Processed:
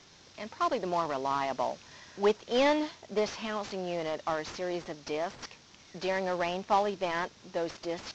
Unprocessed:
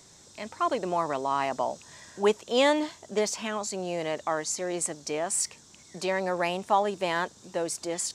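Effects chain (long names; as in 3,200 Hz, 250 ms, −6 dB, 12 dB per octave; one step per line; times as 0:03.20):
variable-slope delta modulation 32 kbit/s
level −2 dB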